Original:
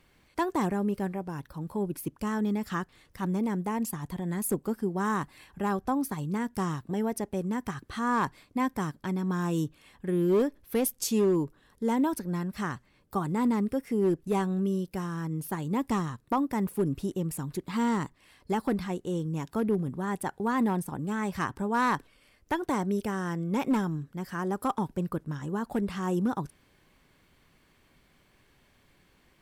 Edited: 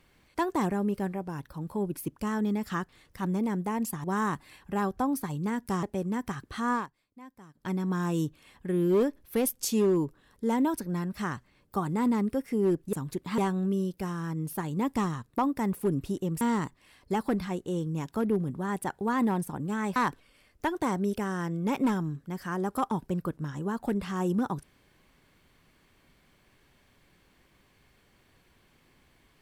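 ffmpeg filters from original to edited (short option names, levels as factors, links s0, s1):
-filter_complex "[0:a]asplit=9[s0][s1][s2][s3][s4][s5][s6][s7][s8];[s0]atrim=end=4.042[s9];[s1]atrim=start=4.918:end=6.712[s10];[s2]atrim=start=7.218:end=8.26,asetpts=PTS-STARTPTS,afade=t=out:st=0.892:d=0.15:silence=0.0944061[s11];[s3]atrim=start=8.26:end=8.93,asetpts=PTS-STARTPTS,volume=0.0944[s12];[s4]atrim=start=8.93:end=14.322,asetpts=PTS-STARTPTS,afade=t=in:d=0.15:silence=0.0944061[s13];[s5]atrim=start=17.348:end=17.802[s14];[s6]atrim=start=14.318:end=17.352[s15];[s7]atrim=start=17.798:end=21.352[s16];[s8]atrim=start=21.828[s17];[s9][s10]acrossfade=d=0.004:c1=hsin:c2=hsin[s18];[s11][s12][s13]concat=n=3:v=0:a=1[s19];[s18][s19]acrossfade=d=0.004:c1=hsin:c2=hsin[s20];[s20][s14]acrossfade=d=0.004:c1=hsin:c2=hsin[s21];[s21][s15]acrossfade=d=0.004:c1=hsin:c2=hsin[s22];[s22][s16]acrossfade=d=0.004:c1=hsin:c2=hsin[s23];[s23][s17]acrossfade=d=0.004:c1=hsin:c2=hsin"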